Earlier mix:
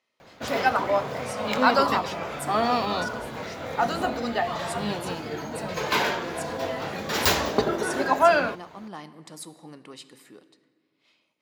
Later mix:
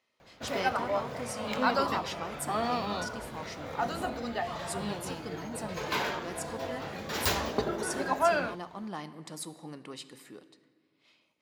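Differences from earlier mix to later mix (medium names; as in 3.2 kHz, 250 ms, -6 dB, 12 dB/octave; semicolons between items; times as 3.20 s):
background -7.5 dB; master: add bass shelf 68 Hz +10.5 dB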